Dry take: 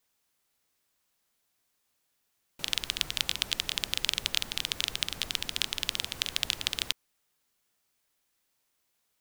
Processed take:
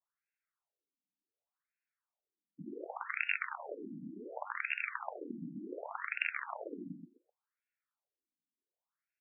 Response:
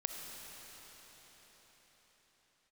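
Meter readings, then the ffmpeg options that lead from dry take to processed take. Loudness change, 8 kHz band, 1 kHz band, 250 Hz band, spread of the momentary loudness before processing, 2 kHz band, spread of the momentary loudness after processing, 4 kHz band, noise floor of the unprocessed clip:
-9.0 dB, under -40 dB, +3.5 dB, +4.5 dB, 3 LU, -1.0 dB, 13 LU, under -25 dB, -77 dBFS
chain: -filter_complex "[0:a]aemphasis=mode=production:type=50fm,bandreject=f=255.6:t=h:w=4,bandreject=f=511.2:t=h:w=4,bandreject=f=766.8:t=h:w=4,bandreject=f=1022.4:t=h:w=4,bandreject=f=1278:t=h:w=4,bandreject=f=1533.6:t=h:w=4,bandreject=f=1789.2:t=h:w=4,bandreject=f=2044.8:t=h:w=4,bandreject=f=2300.4:t=h:w=4,bandreject=f=2556:t=h:w=4,bandreject=f=2811.6:t=h:w=4,bandreject=f=3067.2:t=h:w=4,bandreject=f=3322.8:t=h:w=4,bandreject=f=3578.4:t=h:w=4,bandreject=f=3834:t=h:w=4,afftdn=nr=17:nf=-47,highshelf=f=3300:g=-9.5,asplit=2[s0][s1];[s1]aeval=exprs='(mod(4.22*val(0)+1,2)-1)/4.22':c=same,volume=0.562[s2];[s0][s2]amix=inputs=2:normalize=0,aeval=exprs='0.75*(cos(1*acos(clip(val(0)/0.75,-1,1)))-cos(1*PI/2))+0.0335*(cos(8*acos(clip(val(0)/0.75,-1,1)))-cos(8*PI/2))':c=same,aecho=1:1:129|258|387:0.631|0.101|0.0162,afftfilt=real='re*between(b*sr/1024,220*pow(2000/220,0.5+0.5*sin(2*PI*0.68*pts/sr))/1.41,220*pow(2000/220,0.5+0.5*sin(2*PI*0.68*pts/sr))*1.41)':imag='im*between(b*sr/1024,220*pow(2000/220,0.5+0.5*sin(2*PI*0.68*pts/sr))/1.41,220*pow(2000/220,0.5+0.5*sin(2*PI*0.68*pts/sr))*1.41)':win_size=1024:overlap=0.75,volume=1.88"

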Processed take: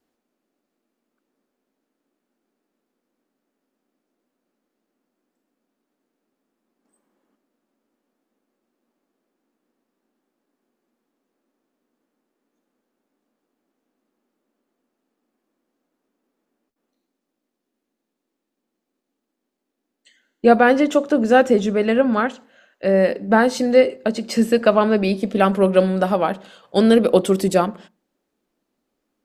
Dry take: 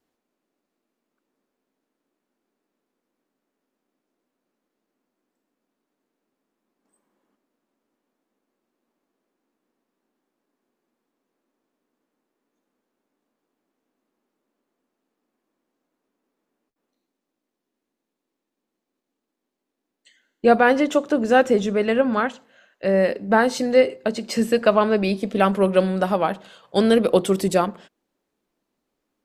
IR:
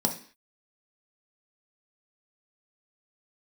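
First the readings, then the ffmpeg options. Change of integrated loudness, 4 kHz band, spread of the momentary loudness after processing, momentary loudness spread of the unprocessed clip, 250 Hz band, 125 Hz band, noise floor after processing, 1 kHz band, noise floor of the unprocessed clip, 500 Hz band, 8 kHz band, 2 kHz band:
+2.5 dB, +1.0 dB, 8 LU, 8 LU, +3.5 dB, no reading, -80 dBFS, +1.5 dB, -82 dBFS, +2.0 dB, +1.0 dB, +1.0 dB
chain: -filter_complex "[0:a]asplit=2[s0][s1];[1:a]atrim=start_sample=2205,lowpass=2500[s2];[s1][s2]afir=irnorm=-1:irlink=0,volume=0.0562[s3];[s0][s3]amix=inputs=2:normalize=0,volume=1.12"

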